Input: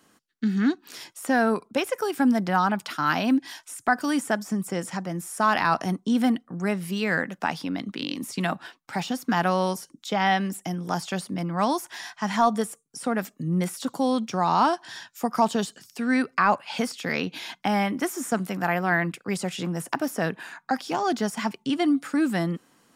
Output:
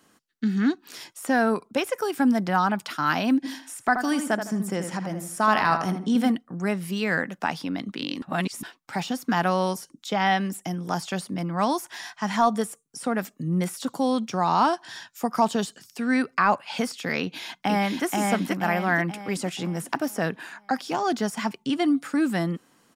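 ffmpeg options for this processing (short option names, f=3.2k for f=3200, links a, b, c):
-filter_complex "[0:a]asplit=3[a][b][c];[a]afade=t=out:st=3.43:d=0.02[d];[b]asplit=2[e][f];[f]adelay=79,lowpass=f=2.6k:p=1,volume=-7dB,asplit=2[g][h];[h]adelay=79,lowpass=f=2.6k:p=1,volume=0.33,asplit=2[i][j];[j]adelay=79,lowpass=f=2.6k:p=1,volume=0.33,asplit=2[k][l];[l]adelay=79,lowpass=f=2.6k:p=1,volume=0.33[m];[e][g][i][k][m]amix=inputs=5:normalize=0,afade=t=in:st=3.43:d=0.02,afade=t=out:st=6.3:d=0.02[n];[c]afade=t=in:st=6.3:d=0.02[o];[d][n][o]amix=inputs=3:normalize=0,asplit=2[p][q];[q]afade=t=in:st=17.21:d=0.01,afade=t=out:st=18.05:d=0.01,aecho=0:1:480|960|1440|1920|2400|2880:0.794328|0.357448|0.160851|0.0723832|0.0325724|0.0146576[r];[p][r]amix=inputs=2:normalize=0,asplit=3[s][t][u];[s]atrim=end=8.222[v];[t]atrim=start=8.218:end=8.632,asetpts=PTS-STARTPTS,areverse[w];[u]atrim=start=8.628[x];[v][w]acrossfade=d=0.004:c1=hsin:c2=hsin[y];[y][x]acrossfade=d=0.004:c1=hsin:c2=hsin"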